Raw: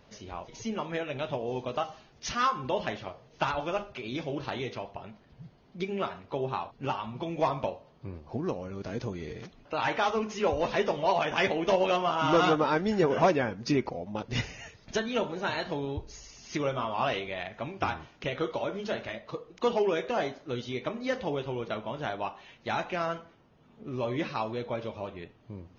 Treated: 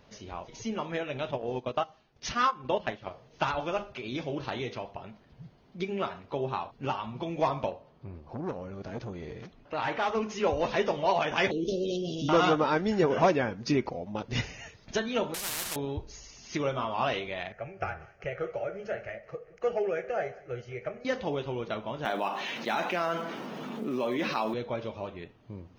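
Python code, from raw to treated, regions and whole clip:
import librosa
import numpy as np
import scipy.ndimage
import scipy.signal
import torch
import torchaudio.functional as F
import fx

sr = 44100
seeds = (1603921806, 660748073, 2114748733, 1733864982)

y = fx.chain(x, sr, fx.transient(attack_db=3, sustain_db=-10),
    fx.air_absorb(metres=56.0), at=(1.31, 3.11))
y = fx.chain(y, sr, fx.high_shelf(hz=4300.0, db=-8.0),
    fx.transformer_sat(knee_hz=1100.0), at=(7.71, 10.15))
y = fx.chain(y, sr, fx.ellip_bandstop(low_hz=420.0, high_hz=3800.0, order=3, stop_db=50),
    fx.env_flatten(amount_pct=50), at=(11.51, 12.29))
y = fx.chain(y, sr, fx.cvsd(bps=64000),
    fx.spectral_comp(ratio=10.0), at=(15.34, 15.76))
y = fx.chain(y, sr, fx.high_shelf(hz=4300.0, db=-7.5),
    fx.fixed_phaser(hz=1000.0, stages=6),
    fx.echo_feedback(ms=190, feedback_pct=45, wet_db=-21.0), at=(17.52, 21.05))
y = fx.chain(y, sr, fx.block_float(bits=7),
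    fx.cheby1_highpass(hz=200.0, order=3),
    fx.env_flatten(amount_pct=70), at=(22.05, 24.54))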